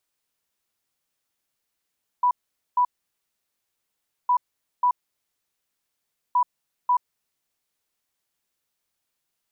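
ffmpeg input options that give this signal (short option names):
-f lavfi -i "aevalsrc='0.158*sin(2*PI*986*t)*clip(min(mod(mod(t,2.06),0.54),0.08-mod(mod(t,2.06),0.54))/0.005,0,1)*lt(mod(t,2.06),1.08)':d=6.18:s=44100"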